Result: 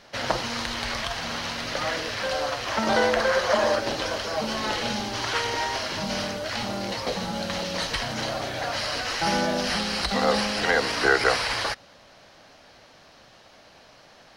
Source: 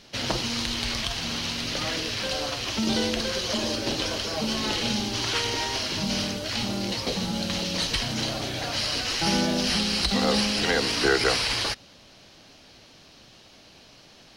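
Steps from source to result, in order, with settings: high-order bell 1 kHz +9 dB 2.3 oct, from 2.70 s +15.5 dB, from 3.79 s +8 dB; trim -3.5 dB

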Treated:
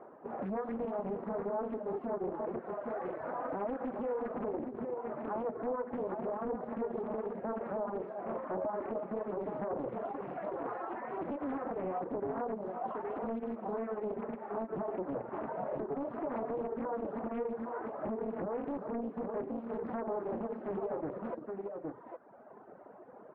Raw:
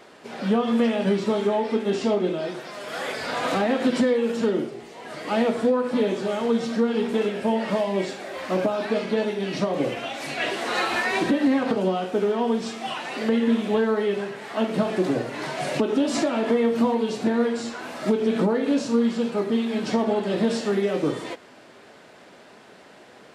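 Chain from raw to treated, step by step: compression 2:1, threshold -31 dBFS, peak gain reduction 8 dB; on a send: multi-tap echo 237/346/814 ms -18/-9.5/-6.5 dB; on the sum: reverb removal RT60 1.2 s; peak limiter -25.5 dBFS, peak gain reduction 8.5 dB; low-pass 1.1 kHz 24 dB/octave; bass shelf 210 Hz -10 dB; loudspeaker Doppler distortion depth 0.66 ms

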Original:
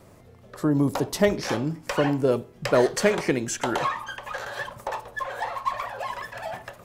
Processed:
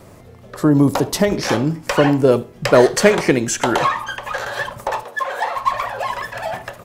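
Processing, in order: 0.88–1.32 s: compression, threshold -20 dBFS, peak gain reduction 6.5 dB; 5.03–5.57 s: high-pass 250 Hz 12 dB/octave; delay 74 ms -23.5 dB; trim +8.5 dB

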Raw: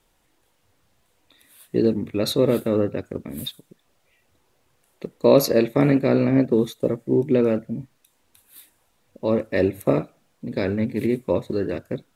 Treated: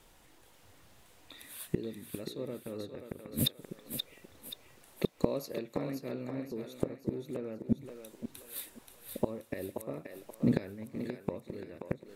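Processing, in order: inverted gate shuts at -20 dBFS, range -26 dB; thinning echo 529 ms, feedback 44%, high-pass 410 Hz, level -5.5 dB; trim +5 dB

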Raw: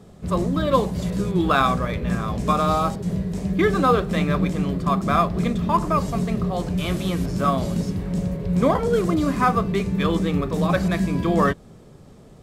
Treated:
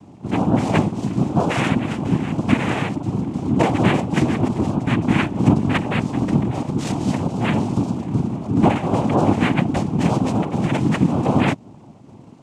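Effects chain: small resonant body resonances 240/1900/2900 Hz, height 17 dB; noise-vocoded speech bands 4; trim -5 dB

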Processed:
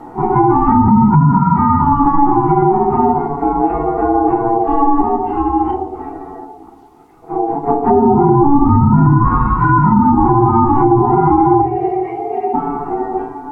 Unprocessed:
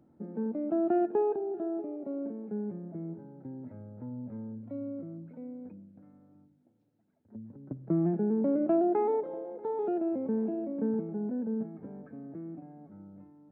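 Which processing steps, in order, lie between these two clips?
phase randomisation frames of 100 ms; time-frequency box 11.61–12.54 s, 250–1300 Hz -24 dB; in parallel at +1 dB: compression 5:1, threshold -41 dBFS, peak gain reduction 18 dB; on the sum: ring modulator 570 Hz; low-pass that closes with the level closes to 640 Hz, closed at -26 dBFS; on a send at -8.5 dB: reverberation RT60 0.85 s, pre-delay 6 ms; on the sum: loudness maximiser +26 dB; trim -1 dB

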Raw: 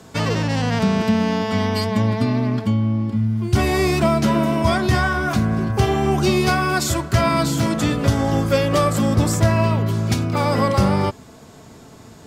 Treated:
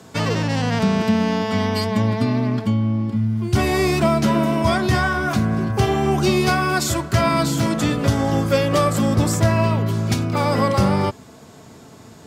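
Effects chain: high-pass 73 Hz

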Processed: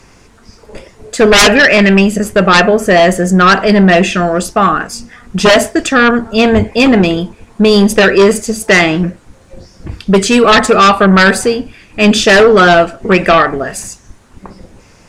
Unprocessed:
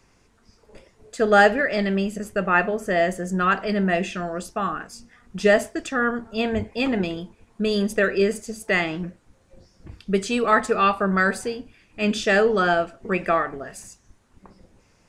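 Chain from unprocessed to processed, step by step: 1.22–2.02 s: graphic EQ with 31 bands 1.6 kHz +4 dB, 2.5 kHz +12 dB, 4 kHz -12 dB; sine folder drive 13 dB, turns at -2 dBFS

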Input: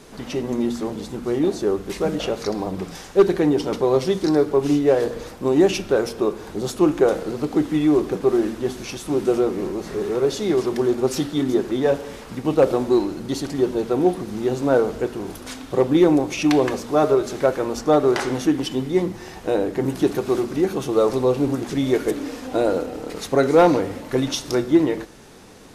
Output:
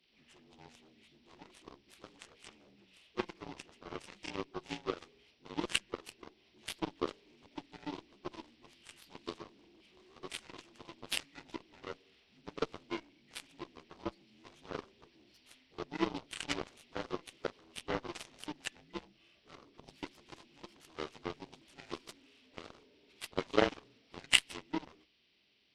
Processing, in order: frequency axis rescaled in octaves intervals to 78%; resonant high shelf 1.8 kHz +12.5 dB, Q 1.5; Chebyshev shaper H 2 -28 dB, 3 -10 dB, 7 -38 dB, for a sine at -1 dBFS; trim -3.5 dB

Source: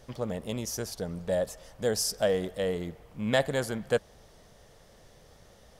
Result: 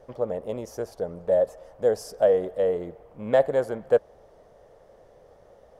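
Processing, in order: FFT filter 210 Hz 0 dB, 530 Hz +13 dB, 3.8 kHz -8 dB; trim -4.5 dB

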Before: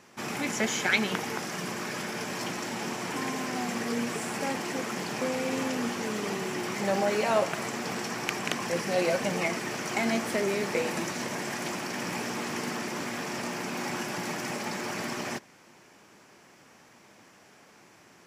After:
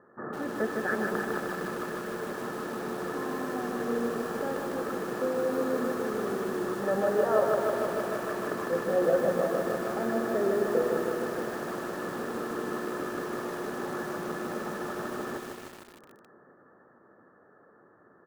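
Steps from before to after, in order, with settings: rippled Chebyshev low-pass 1.8 kHz, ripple 9 dB; feedback delay 384 ms, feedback 59%, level -17 dB; bit-crushed delay 153 ms, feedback 80%, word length 8-bit, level -3.5 dB; trim +3 dB

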